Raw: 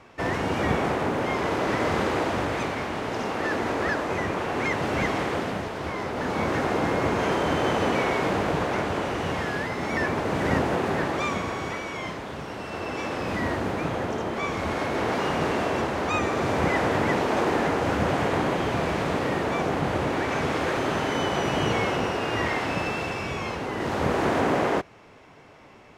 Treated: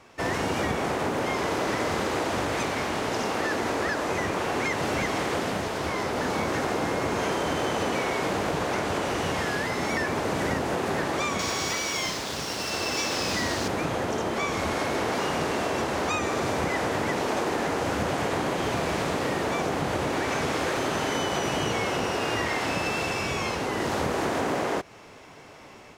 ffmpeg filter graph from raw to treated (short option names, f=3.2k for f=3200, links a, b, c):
-filter_complex "[0:a]asettb=1/sr,asplit=3[a][b][c];[a]atrim=end=11.394[d];[b]atrim=start=11.39:end=13.68,asetpts=PTS-STARTPTS,afade=t=in:d=0.004:c=qsin,afade=t=out:st=2.286:d=0.004:c=qsin,equalizer=f=5.2k:t=o:w=1.5:g=11.5,aeval=exprs='sgn(val(0))*max(abs(val(0))-0.00473,0)':c=same[e];[c]atrim=start=13.676[f];[d][e]acrossfade=d=0.004:c1=hsin:c2=qsin[g];[g][f]acrossfade=d=0.004:c1=qsin:c2=hsin,dynaudnorm=f=160:g=3:m=5.5dB,bass=f=250:g=-2,treble=f=4k:g=8,acompressor=threshold=-21dB:ratio=6,volume=-2.5dB"